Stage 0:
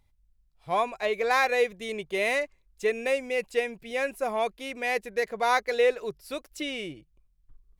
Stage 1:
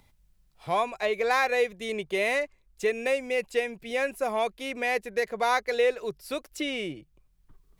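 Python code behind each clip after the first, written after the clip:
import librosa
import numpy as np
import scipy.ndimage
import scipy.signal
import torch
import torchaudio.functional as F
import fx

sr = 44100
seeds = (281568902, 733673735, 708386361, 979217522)

y = fx.band_squash(x, sr, depth_pct=40)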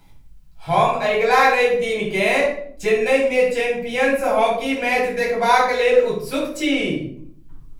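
y = fx.room_shoebox(x, sr, seeds[0], volume_m3=790.0, walls='furnished', distance_m=8.0)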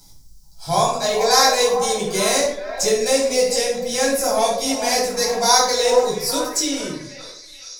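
y = fx.fade_out_tail(x, sr, length_s=1.69)
y = fx.high_shelf_res(y, sr, hz=3700.0, db=13.5, q=3.0)
y = fx.echo_stepped(y, sr, ms=433, hz=750.0, octaves=0.7, feedback_pct=70, wet_db=-7.0)
y = F.gain(torch.from_numpy(y), -1.0).numpy()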